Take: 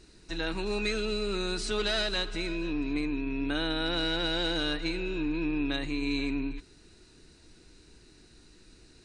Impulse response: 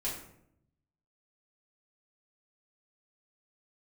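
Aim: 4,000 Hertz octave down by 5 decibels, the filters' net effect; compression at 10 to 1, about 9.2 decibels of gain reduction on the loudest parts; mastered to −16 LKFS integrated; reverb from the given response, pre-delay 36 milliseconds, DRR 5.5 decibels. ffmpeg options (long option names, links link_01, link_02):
-filter_complex "[0:a]equalizer=frequency=4000:width_type=o:gain=-5.5,acompressor=threshold=-36dB:ratio=10,asplit=2[link_01][link_02];[1:a]atrim=start_sample=2205,adelay=36[link_03];[link_02][link_03]afir=irnorm=-1:irlink=0,volume=-9dB[link_04];[link_01][link_04]amix=inputs=2:normalize=0,volume=23.5dB"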